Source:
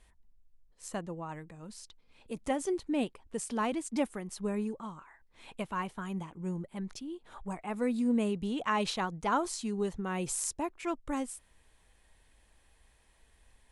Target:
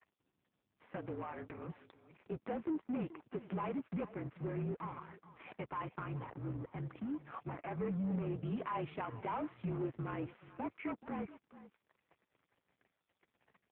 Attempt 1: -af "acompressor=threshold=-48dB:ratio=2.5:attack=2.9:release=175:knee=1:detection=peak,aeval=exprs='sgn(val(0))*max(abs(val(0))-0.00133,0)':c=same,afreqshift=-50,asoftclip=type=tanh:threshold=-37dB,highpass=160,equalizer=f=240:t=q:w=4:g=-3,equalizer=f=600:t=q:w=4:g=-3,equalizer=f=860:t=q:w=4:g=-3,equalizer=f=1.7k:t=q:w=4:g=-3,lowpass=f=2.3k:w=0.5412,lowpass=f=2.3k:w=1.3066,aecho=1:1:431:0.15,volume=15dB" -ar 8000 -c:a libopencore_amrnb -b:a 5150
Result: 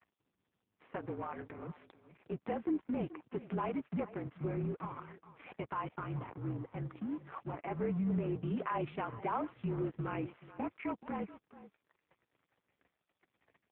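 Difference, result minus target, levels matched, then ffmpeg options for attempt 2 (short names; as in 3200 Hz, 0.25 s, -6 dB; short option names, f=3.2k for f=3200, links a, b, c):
soft clip: distortion -10 dB
-af "acompressor=threshold=-48dB:ratio=2.5:attack=2.9:release=175:knee=1:detection=peak,aeval=exprs='sgn(val(0))*max(abs(val(0))-0.00133,0)':c=same,afreqshift=-50,asoftclip=type=tanh:threshold=-45dB,highpass=160,equalizer=f=240:t=q:w=4:g=-3,equalizer=f=600:t=q:w=4:g=-3,equalizer=f=860:t=q:w=4:g=-3,equalizer=f=1.7k:t=q:w=4:g=-3,lowpass=f=2.3k:w=0.5412,lowpass=f=2.3k:w=1.3066,aecho=1:1:431:0.15,volume=15dB" -ar 8000 -c:a libopencore_amrnb -b:a 5150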